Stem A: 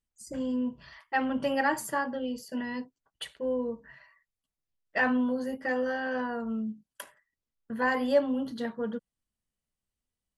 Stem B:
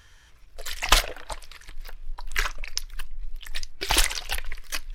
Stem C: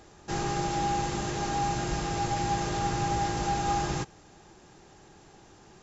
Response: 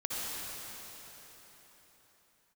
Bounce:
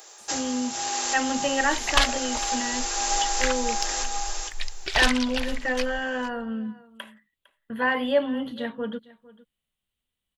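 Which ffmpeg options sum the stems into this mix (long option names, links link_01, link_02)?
-filter_complex "[0:a]acrossover=split=3400[link_01][link_02];[link_02]acompressor=threshold=-55dB:ratio=4:attack=1:release=60[link_03];[link_01][link_03]amix=inputs=2:normalize=0,highshelf=frequency=4200:width_type=q:width=3:gain=-7.5,volume=1.5dB,asplit=3[link_04][link_05][link_06];[link_05]volume=-21dB[link_07];[1:a]lowpass=3700,acontrast=80,adelay=1050,volume=-9dB,asplit=2[link_08][link_09];[link_09]volume=-17dB[link_10];[2:a]highpass=frequency=470:width=0.5412,highpass=frequency=470:width=1.3066,highshelf=frequency=6600:gain=9.5,volume=2.5dB,asplit=2[link_11][link_12];[link_12]volume=-8dB[link_13];[link_06]apad=whole_len=257087[link_14];[link_11][link_14]sidechaincompress=threshold=-35dB:ratio=8:attack=16:release=696[link_15];[link_07][link_10][link_13]amix=inputs=3:normalize=0,aecho=0:1:455:1[link_16];[link_04][link_08][link_15][link_16]amix=inputs=4:normalize=0,highshelf=frequency=3400:gain=11"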